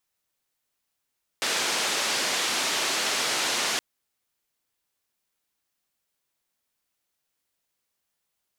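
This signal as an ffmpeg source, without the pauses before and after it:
-f lavfi -i "anoisesrc=c=white:d=2.37:r=44100:seed=1,highpass=f=270,lowpass=f=5900,volume=-16dB"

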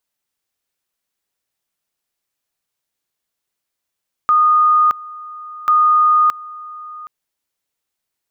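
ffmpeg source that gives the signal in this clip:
-f lavfi -i "aevalsrc='pow(10,(-9-20.5*gte(mod(t,1.39),0.62))/20)*sin(2*PI*1230*t)':d=2.78:s=44100"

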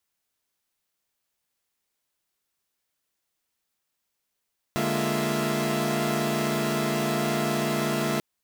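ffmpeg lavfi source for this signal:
-f lavfi -i "aevalsrc='0.0398*((2*mod(146.83*t,1)-1)+(2*mod(207.65*t,1)-1)+(2*mod(233.08*t,1)-1)+(2*mod(349.23*t,1)-1)+(2*mod(659.26*t,1)-1))':d=3.44:s=44100"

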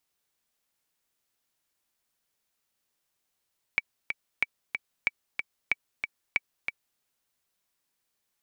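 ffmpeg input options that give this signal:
-f lavfi -i "aevalsrc='pow(10,(-10.5-6*gte(mod(t,2*60/186),60/186))/20)*sin(2*PI*2290*mod(t,60/186))*exp(-6.91*mod(t,60/186)/0.03)':d=3.22:s=44100"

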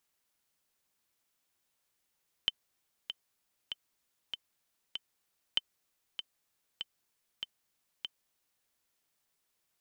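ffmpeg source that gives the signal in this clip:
-f lavfi -i "aevalsrc='pow(10,(-14-9.5*gte(mod(t,5*60/97),60/97))/20)*sin(2*PI*3070*mod(t,60/97))*exp(-6.91*mod(t,60/97)/0.03)':d=6.18:s=44100"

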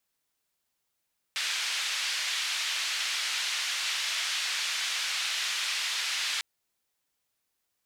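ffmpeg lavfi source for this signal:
-f lavfi -i "anoisesrc=c=white:d=5.05:r=44100:seed=1,highpass=f=1900,lowpass=f=4200,volume=-16.8dB"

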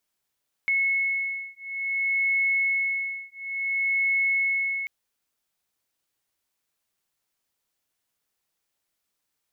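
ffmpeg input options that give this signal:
-f lavfi -i "aevalsrc='0.0501*(sin(2*PI*2190*t)+sin(2*PI*2190.57*t))':d=4.19:s=44100"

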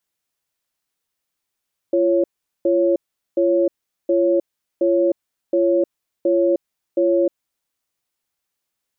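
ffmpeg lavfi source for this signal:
-f lavfi -i "aevalsrc='0.15*(sin(2*PI*343*t)+sin(2*PI*553*t))*clip(min(mod(t,0.72),0.31-mod(t,0.72))/0.005,0,1)':d=5.57:s=44100"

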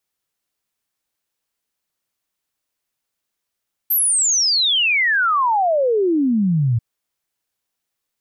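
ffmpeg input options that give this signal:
-f lavfi -i "aevalsrc='0.2*clip(min(t,2.89-t)/0.01,0,1)*sin(2*PI*13000*2.89/log(110/13000)*(exp(log(110/13000)*t/2.89)-1))':d=2.89:s=44100"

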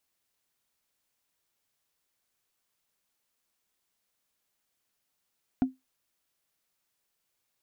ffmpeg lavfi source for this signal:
-f lavfi -i "aevalsrc='0.141*pow(10,-3*t/0.18)*sin(2*PI*260*t)+0.0398*pow(10,-3*t/0.053)*sin(2*PI*716.8*t)+0.0112*pow(10,-3*t/0.024)*sin(2*PI*1405*t)+0.00316*pow(10,-3*t/0.013)*sin(2*PI*2322.6*t)+0.000891*pow(10,-3*t/0.008)*sin(2*PI*3468.4*t)':d=0.45:s=44100"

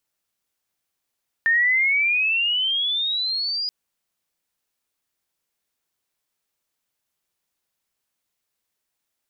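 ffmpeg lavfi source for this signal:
-f lavfi -i "aevalsrc='pow(10,(-15-8*t/2.23)/20)*sin(2*PI*1800*2.23/(17.5*log(2)/12)*(exp(17.5*log(2)/12*t/2.23)-1))':d=2.23:s=44100"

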